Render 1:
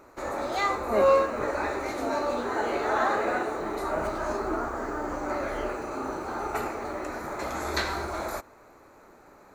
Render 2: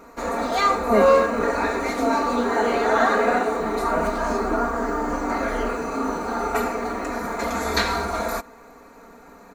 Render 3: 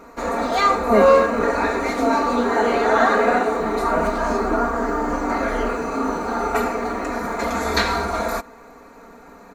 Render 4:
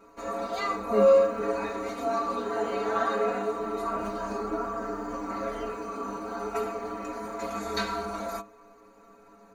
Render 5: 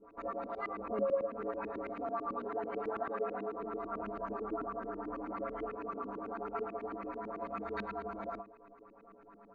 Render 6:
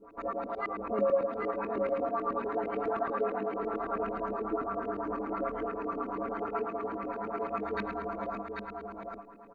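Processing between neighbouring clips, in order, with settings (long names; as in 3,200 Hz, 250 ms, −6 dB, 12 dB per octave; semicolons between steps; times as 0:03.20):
parametric band 210 Hz +3 dB 0.9 octaves; comb filter 4.3 ms, depth 88%; level +4.5 dB
high-shelf EQ 6,900 Hz −4.5 dB; level +2.5 dB
stiff-string resonator 100 Hz, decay 0.23 s, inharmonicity 0.008; level −2.5 dB
downward compressor 2 to 1, threshold −36 dBFS, peak gain reduction 11.5 dB; auto-filter low-pass saw up 9.1 Hz 250–2,600 Hz; level −6 dB
single-tap delay 791 ms −5 dB; level +4.5 dB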